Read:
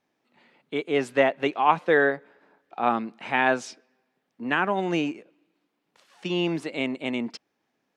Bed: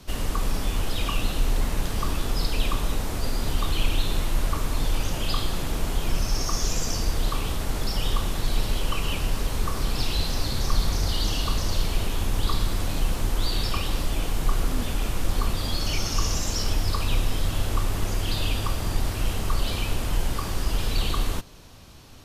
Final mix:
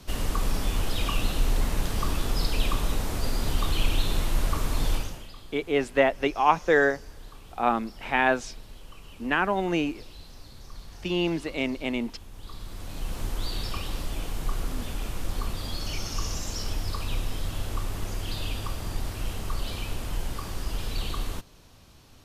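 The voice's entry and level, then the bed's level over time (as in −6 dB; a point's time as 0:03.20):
4.80 s, −0.5 dB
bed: 0:04.94 −1 dB
0:05.32 −20.5 dB
0:12.30 −20.5 dB
0:13.21 −6 dB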